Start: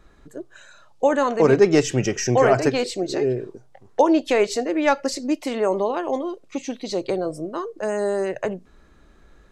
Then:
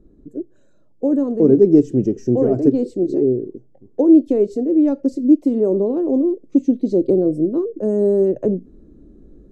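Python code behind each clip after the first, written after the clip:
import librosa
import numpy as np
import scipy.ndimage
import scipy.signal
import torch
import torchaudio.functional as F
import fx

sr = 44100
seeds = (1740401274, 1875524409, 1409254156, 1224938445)

y = fx.curve_eq(x, sr, hz=(120.0, 290.0, 520.0, 850.0, 2100.0, 7900.0), db=(0, 10, -2, -18, -29, -19))
y = fx.rider(y, sr, range_db=5, speed_s=2.0)
y = F.gain(torch.from_numpy(y), 1.0).numpy()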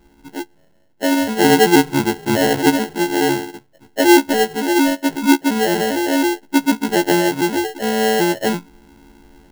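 y = fx.freq_snap(x, sr, grid_st=4)
y = fx.sample_hold(y, sr, seeds[0], rate_hz=1200.0, jitter_pct=0)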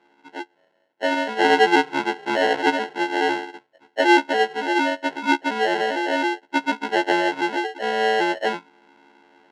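y = fx.bandpass_edges(x, sr, low_hz=510.0, high_hz=3100.0)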